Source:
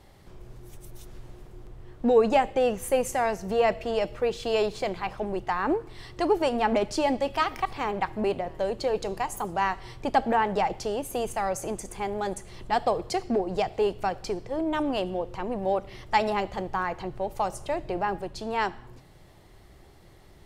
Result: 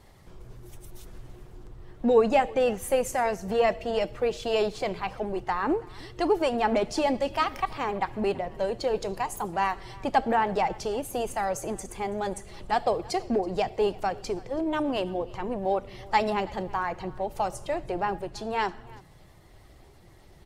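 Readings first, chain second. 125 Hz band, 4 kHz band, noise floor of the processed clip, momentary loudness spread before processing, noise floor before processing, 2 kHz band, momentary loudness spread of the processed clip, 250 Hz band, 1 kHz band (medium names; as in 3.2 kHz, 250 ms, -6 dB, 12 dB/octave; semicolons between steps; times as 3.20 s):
-0.5 dB, -0.5 dB, -53 dBFS, 8 LU, -53 dBFS, -0.5 dB, 9 LU, -0.5 dB, -0.5 dB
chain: coarse spectral quantiser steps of 15 dB; delay 329 ms -23 dB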